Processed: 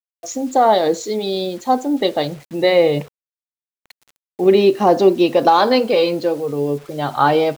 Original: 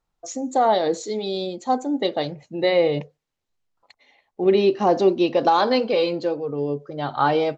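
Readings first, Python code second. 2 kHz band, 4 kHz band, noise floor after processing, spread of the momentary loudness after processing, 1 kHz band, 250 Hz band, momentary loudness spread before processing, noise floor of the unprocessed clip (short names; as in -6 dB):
+5.0 dB, +5.0 dB, under -85 dBFS, 10 LU, +5.0 dB, +5.0 dB, 10 LU, -79 dBFS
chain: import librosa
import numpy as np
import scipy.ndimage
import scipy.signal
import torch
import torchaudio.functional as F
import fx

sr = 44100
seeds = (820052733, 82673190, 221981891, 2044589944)

y = fx.quant_dither(x, sr, seeds[0], bits=8, dither='none')
y = y * 10.0 ** (5.0 / 20.0)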